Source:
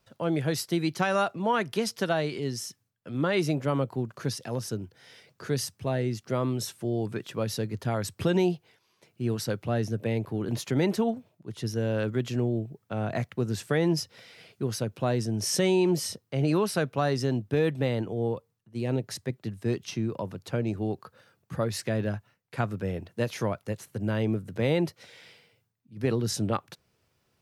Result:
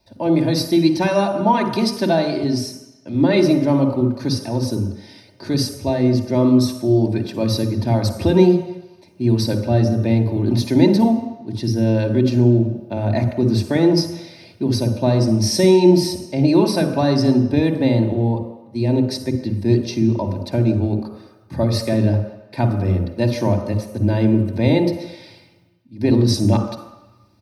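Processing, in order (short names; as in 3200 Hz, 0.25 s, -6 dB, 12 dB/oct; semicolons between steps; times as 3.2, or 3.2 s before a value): comb 3.3 ms, depth 63%; reverb RT60 1.0 s, pre-delay 47 ms, DRR 6 dB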